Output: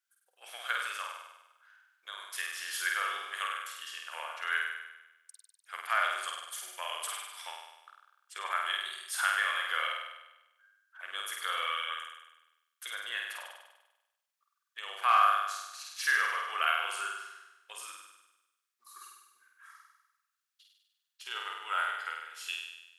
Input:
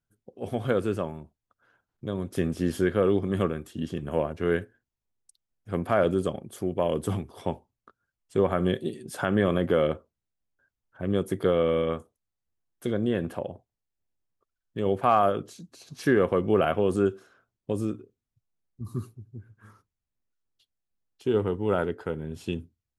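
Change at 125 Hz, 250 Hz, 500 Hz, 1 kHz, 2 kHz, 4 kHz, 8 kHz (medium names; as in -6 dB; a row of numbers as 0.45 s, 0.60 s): under -40 dB, under -40 dB, -24.5 dB, -0.5 dB, +6.0 dB, +7.0 dB, +7.0 dB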